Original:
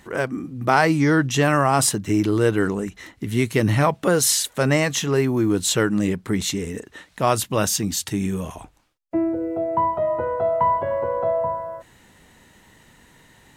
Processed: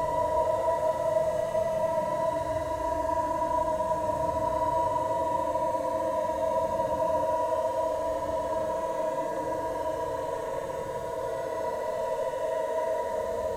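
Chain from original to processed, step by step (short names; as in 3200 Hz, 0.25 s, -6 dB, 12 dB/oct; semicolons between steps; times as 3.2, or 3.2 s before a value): diffused feedback echo 0.869 s, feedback 49%, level -7.5 dB; frequency shift -20 Hz; Paulstretch 27×, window 0.05 s, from 12.26; gain +3 dB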